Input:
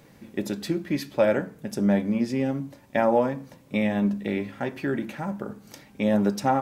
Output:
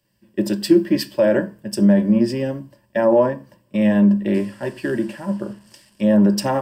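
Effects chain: 4.34–6.01 s: one-bit delta coder 64 kbps, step -43.5 dBFS; rippled EQ curve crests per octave 1.3, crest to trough 11 dB; peak limiter -14 dBFS, peak gain reduction 7.5 dB; dynamic bell 350 Hz, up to +5 dB, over -35 dBFS, Q 0.93; three bands expanded up and down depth 70%; trim +3.5 dB

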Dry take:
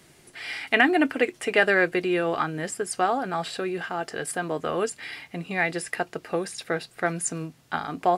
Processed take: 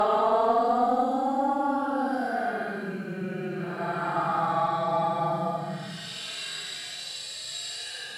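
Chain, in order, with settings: Paulstretch 17×, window 0.05 s, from 3.09 s; harmonic-percussive split harmonic +5 dB; Chebyshev shaper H 2 -25 dB, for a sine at -6.5 dBFS; trim -4.5 dB

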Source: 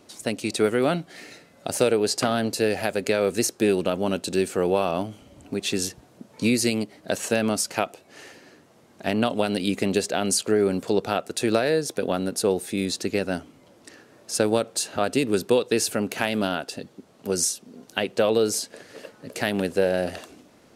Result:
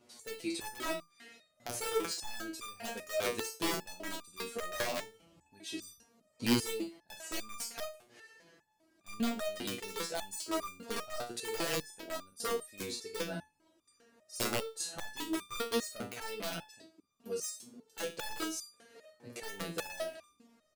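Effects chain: early reflections 40 ms -14.5 dB, 51 ms -9.5 dB; integer overflow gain 13 dB; resonator arpeggio 5 Hz 120–1200 Hz

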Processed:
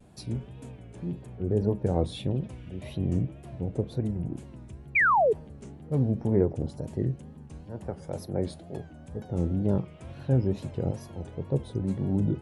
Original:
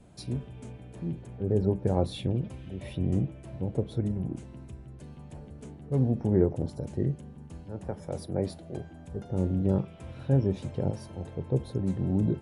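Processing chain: wow and flutter 120 cents; painted sound fall, 4.95–5.33 s, 400–2500 Hz -21 dBFS

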